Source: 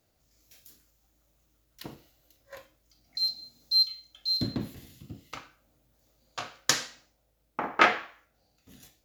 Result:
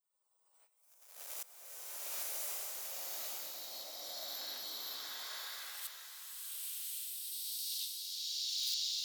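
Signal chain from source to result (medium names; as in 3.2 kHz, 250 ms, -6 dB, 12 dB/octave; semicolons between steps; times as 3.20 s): reverse spectral sustain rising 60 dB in 2.30 s; high-pass 120 Hz 24 dB/octave; spectral gate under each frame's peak -25 dB weak; peaking EQ 1.8 kHz -10 dB 2.3 oct; waveshaping leveller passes 3; inverted gate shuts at -39 dBFS, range -26 dB; in parallel at -9 dB: small samples zeroed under -49 dBFS; on the sum: high-pass sweep 570 Hz -> 3.5 kHz, 2.87–5.88 s; on a send: repeats whose band climbs or falls 413 ms, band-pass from 440 Hz, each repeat 1.4 oct, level -10 dB; on the sum: swelling reverb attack 1160 ms, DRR -9 dB; trim +10 dB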